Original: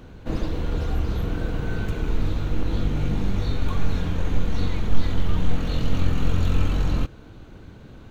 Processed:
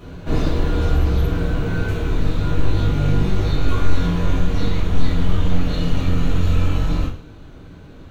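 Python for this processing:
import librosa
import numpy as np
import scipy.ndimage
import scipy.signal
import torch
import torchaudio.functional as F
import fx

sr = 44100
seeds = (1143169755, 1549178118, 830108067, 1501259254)

y = fx.rider(x, sr, range_db=10, speed_s=2.0)
y = fx.doubler(y, sr, ms=19.0, db=-4.0, at=(2.38, 4.36))
y = fx.rev_double_slope(y, sr, seeds[0], early_s=0.43, late_s=2.1, knee_db=-26, drr_db=-8.0)
y = y * librosa.db_to_amplitude(-4.0)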